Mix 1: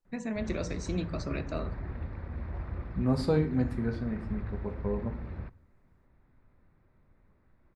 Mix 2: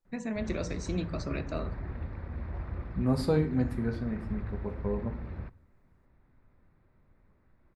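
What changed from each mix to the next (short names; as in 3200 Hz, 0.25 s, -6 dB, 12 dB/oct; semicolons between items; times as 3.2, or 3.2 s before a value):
second voice: remove LPF 8600 Hz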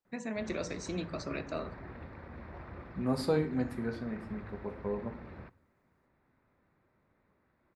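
master: add HPF 290 Hz 6 dB/oct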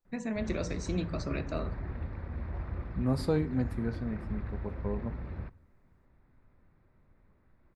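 second voice: send -8.0 dB; master: remove HPF 290 Hz 6 dB/oct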